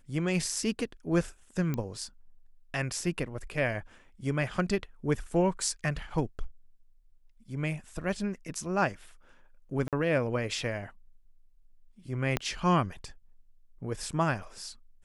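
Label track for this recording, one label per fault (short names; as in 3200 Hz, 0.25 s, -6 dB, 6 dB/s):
1.740000	1.740000	pop -19 dBFS
9.880000	9.930000	gap 47 ms
12.370000	12.370000	pop -13 dBFS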